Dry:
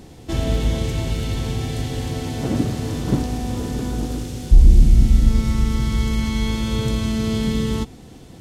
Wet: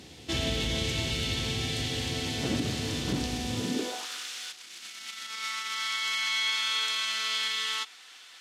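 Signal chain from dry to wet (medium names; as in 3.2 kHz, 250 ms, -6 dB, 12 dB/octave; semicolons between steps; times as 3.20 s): peak limiter -12 dBFS, peak gain reduction 9.5 dB; high-pass sweep 64 Hz -> 1.3 kHz, 3.49–4.07 s; frequency weighting D; trim -6.5 dB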